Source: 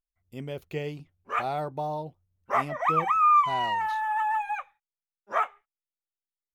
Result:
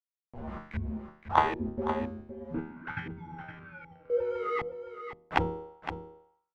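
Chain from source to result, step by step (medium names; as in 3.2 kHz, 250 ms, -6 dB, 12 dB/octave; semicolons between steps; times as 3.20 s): dynamic bell 1.2 kHz, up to +8 dB, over -36 dBFS, Q 0.9; companded quantiser 2-bit; 2.04–4.10 s: vowel filter e; feedback comb 77 Hz, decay 0.53 s, harmonics all, mix 90%; LFO low-pass saw up 1.3 Hz 470–2400 Hz; frequency shift -370 Hz; delay 515 ms -10 dB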